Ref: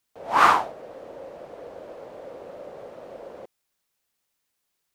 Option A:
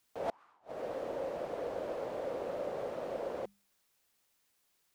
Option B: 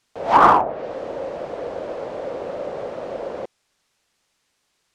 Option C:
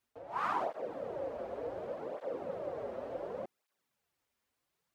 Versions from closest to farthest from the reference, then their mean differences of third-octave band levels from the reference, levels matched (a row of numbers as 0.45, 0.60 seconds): B, C, A; 5.0, 7.5, 14.5 decibels